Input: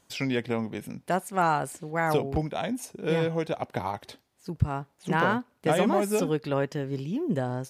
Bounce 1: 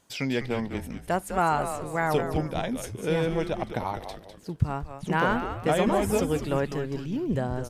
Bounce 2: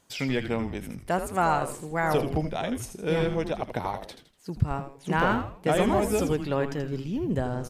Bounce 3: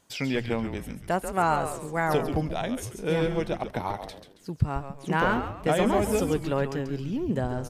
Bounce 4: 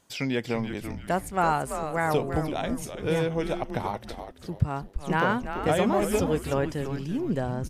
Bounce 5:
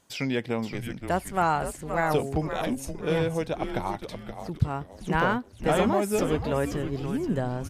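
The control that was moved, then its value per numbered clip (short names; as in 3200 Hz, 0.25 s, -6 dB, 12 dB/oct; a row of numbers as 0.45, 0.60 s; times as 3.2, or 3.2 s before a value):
frequency-shifting echo, time: 202, 81, 137, 336, 523 ms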